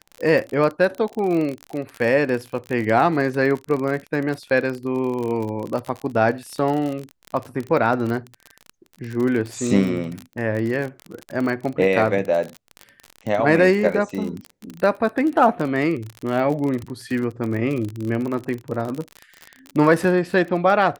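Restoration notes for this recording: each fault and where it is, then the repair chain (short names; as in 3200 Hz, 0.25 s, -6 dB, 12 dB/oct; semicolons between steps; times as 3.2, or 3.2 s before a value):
crackle 38/s -25 dBFS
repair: de-click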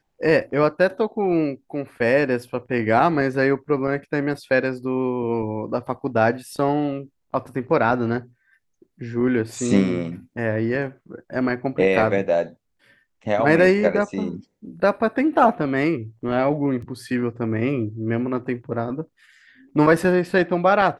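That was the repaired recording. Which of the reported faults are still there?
none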